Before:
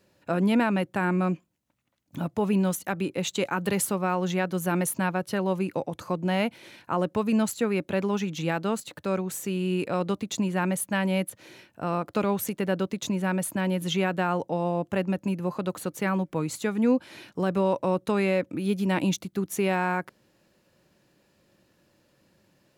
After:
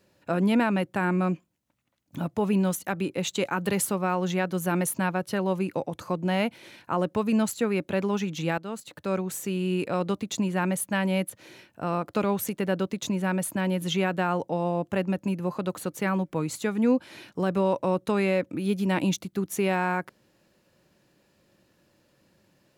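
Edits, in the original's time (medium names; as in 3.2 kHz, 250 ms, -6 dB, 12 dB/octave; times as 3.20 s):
8.58–9.15 s: fade in, from -12 dB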